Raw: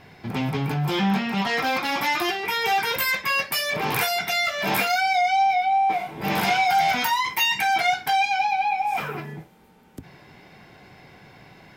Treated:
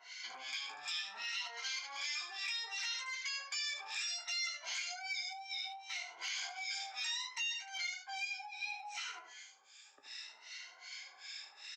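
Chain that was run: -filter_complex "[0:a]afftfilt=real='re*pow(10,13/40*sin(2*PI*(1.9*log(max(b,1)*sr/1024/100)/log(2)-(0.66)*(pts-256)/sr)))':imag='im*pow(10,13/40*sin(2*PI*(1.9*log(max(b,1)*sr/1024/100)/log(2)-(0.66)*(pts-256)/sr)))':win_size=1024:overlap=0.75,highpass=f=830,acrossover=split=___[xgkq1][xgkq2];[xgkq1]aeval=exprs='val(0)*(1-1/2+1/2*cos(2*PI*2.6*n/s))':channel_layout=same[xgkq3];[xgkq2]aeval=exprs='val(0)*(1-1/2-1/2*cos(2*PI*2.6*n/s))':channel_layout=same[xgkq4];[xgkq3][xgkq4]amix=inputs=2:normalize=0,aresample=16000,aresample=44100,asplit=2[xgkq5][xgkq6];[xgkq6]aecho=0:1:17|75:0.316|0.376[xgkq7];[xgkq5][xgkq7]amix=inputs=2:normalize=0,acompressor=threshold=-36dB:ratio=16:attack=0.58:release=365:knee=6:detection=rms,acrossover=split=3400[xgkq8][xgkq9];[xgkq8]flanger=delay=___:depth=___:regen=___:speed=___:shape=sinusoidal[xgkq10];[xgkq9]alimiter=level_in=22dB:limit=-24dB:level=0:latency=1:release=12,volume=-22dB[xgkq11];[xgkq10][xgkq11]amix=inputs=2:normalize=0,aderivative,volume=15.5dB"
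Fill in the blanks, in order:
1300, 7.1, 2.6, 80, 0.51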